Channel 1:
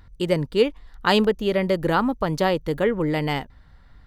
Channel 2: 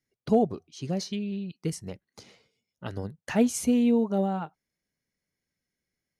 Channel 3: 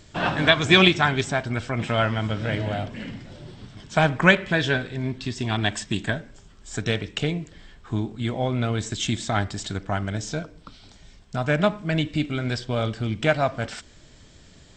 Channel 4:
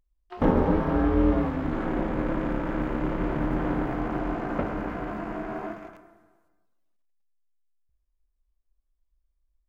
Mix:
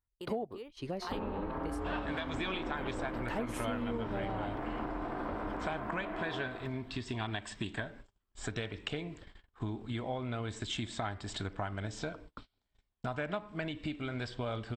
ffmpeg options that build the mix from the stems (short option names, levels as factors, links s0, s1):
-filter_complex "[0:a]acompressor=threshold=0.0112:ratio=2,highshelf=f=10000:g=10.5,volume=0.335,asplit=3[s0][s1][s2];[s0]atrim=end=1.2,asetpts=PTS-STARTPTS,afade=t=out:st=1.196:d=0.004:c=hsin[s3];[s1]atrim=start=1.2:end=2.78,asetpts=PTS-STARTPTS,volume=0[s4];[s2]atrim=start=2.78,asetpts=PTS-STARTPTS,afade=t=in:d=0.004:c=hsin[s5];[s3][s4][s5]concat=n=3:v=0:a=1[s6];[1:a]bass=f=250:g=-5,treble=f=4000:g=-3,volume=1.12[s7];[2:a]alimiter=limit=0.237:level=0:latency=1:release=269,adelay=1700,volume=0.75[s8];[3:a]dynaudnorm=f=110:g=3:m=3.98,alimiter=limit=0.355:level=0:latency=1,adelay=700,volume=0.299[s9];[s6][s7][s8][s9]amix=inputs=4:normalize=0,agate=range=0.0282:threshold=0.00562:ratio=16:detection=peak,equalizer=f=160:t=o:w=0.67:g=-7,equalizer=f=1000:t=o:w=0.67:g=4,equalizer=f=6300:t=o:w=0.67:g=-10,acompressor=threshold=0.0178:ratio=4"